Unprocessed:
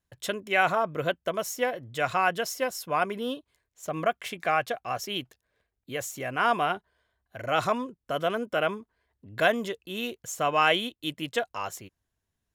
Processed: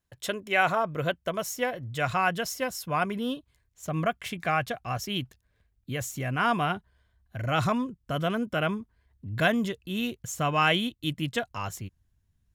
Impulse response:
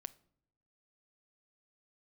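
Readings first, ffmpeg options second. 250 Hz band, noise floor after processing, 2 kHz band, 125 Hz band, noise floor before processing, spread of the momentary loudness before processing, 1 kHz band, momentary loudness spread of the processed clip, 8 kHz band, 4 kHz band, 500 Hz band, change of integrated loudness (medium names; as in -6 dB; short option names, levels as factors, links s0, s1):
+5.0 dB, -72 dBFS, -0.5 dB, +9.0 dB, -83 dBFS, 12 LU, -1.5 dB, 12 LU, 0.0 dB, 0.0 dB, -2.5 dB, -0.5 dB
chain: -af "asubboost=boost=5.5:cutoff=190"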